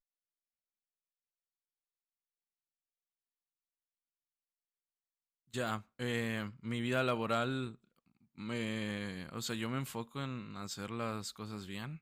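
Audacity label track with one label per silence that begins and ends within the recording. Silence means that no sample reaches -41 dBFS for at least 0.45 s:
7.710000	8.400000	silence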